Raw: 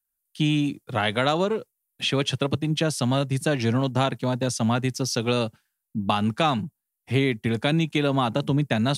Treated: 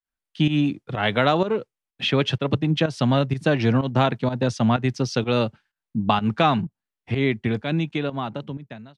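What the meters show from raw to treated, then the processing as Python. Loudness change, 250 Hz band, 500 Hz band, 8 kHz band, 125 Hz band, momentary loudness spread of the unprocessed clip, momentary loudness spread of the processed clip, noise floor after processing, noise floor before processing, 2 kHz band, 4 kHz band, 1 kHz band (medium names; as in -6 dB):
+1.5 dB, +1.5 dB, +2.0 dB, -9.0 dB, +1.5 dB, 4 LU, 9 LU, under -85 dBFS, -82 dBFS, +1.5 dB, -0.5 dB, +2.5 dB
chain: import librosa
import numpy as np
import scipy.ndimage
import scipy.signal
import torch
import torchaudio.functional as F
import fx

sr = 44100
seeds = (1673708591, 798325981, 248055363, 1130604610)

y = fx.fade_out_tail(x, sr, length_s=1.94)
y = scipy.signal.sosfilt(scipy.signal.butter(2, 3500.0, 'lowpass', fs=sr, output='sos'), y)
y = fx.volume_shaper(y, sr, bpm=126, per_beat=1, depth_db=-13, release_ms=151.0, shape='fast start')
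y = y * 10.0 ** (3.5 / 20.0)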